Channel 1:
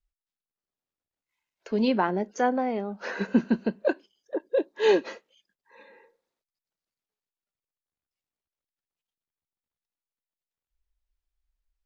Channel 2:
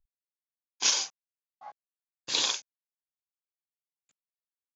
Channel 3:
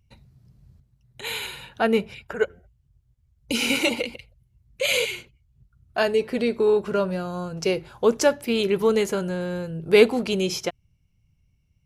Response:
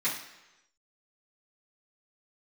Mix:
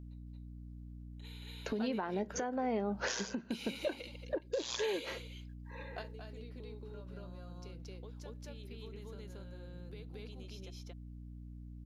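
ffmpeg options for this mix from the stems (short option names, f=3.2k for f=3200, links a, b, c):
-filter_complex "[0:a]volume=3dB,asplit=2[a][b];[1:a]tremolo=f=120:d=0.857,adelay=2250,volume=-0.5dB[c];[2:a]equalizer=f=3.8k:t=o:w=0.47:g=8.5,bandreject=f=8k:w=6,acompressor=threshold=-25dB:ratio=6,volume=-14.5dB,asplit=2[d][e];[e]volume=-11dB[f];[b]apad=whole_len=522872[g];[d][g]sidechaingate=range=-13dB:threshold=-51dB:ratio=16:detection=peak[h];[a][c]amix=inputs=2:normalize=0,aeval=exprs='val(0)+0.00447*(sin(2*PI*60*n/s)+sin(2*PI*2*60*n/s)/2+sin(2*PI*3*60*n/s)/3+sin(2*PI*4*60*n/s)/4+sin(2*PI*5*60*n/s)/5)':c=same,acompressor=threshold=-28dB:ratio=16,volume=0dB[i];[f]aecho=0:1:227:1[j];[h][i][j]amix=inputs=3:normalize=0,alimiter=level_in=1.5dB:limit=-24dB:level=0:latency=1:release=368,volume=-1.5dB"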